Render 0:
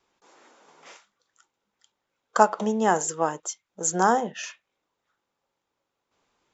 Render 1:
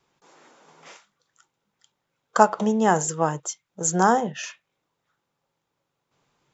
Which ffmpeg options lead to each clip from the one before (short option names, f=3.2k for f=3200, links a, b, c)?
-af "equalizer=f=140:t=o:w=0.54:g=14,volume=1.5dB"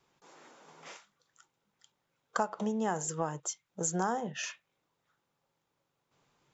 -af "acompressor=threshold=-29dB:ratio=3,volume=-2.5dB"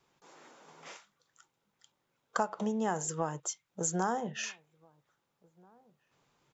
-filter_complex "[0:a]asplit=2[a][b];[b]adelay=1633,volume=-28dB,highshelf=f=4k:g=-36.7[c];[a][c]amix=inputs=2:normalize=0"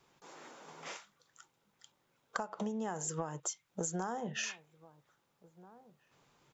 -af "acompressor=threshold=-37dB:ratio=12,volume=3.5dB"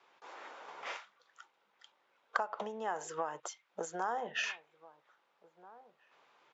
-af "highpass=570,lowpass=3.2k,volume=5.5dB"